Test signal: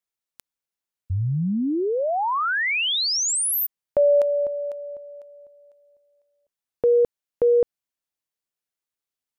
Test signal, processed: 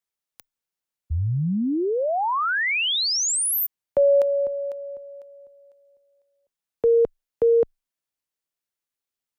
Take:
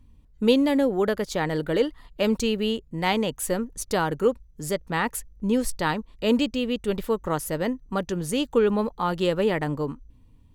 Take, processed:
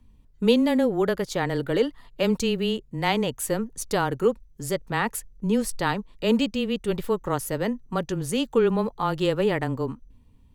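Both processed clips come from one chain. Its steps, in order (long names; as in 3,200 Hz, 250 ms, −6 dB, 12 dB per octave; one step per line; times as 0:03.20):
frequency shifter −14 Hz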